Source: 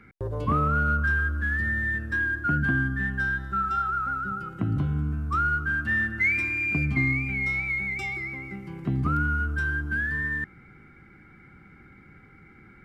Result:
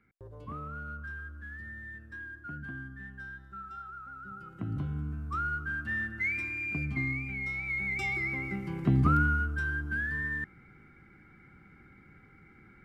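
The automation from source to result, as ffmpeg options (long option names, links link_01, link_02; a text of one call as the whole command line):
ffmpeg -i in.wav -af "volume=2dB,afade=type=in:start_time=4.11:duration=0.65:silence=0.354813,afade=type=in:start_time=7.58:duration=0.81:silence=0.316228,afade=type=out:start_time=9:duration=0.51:silence=0.446684" out.wav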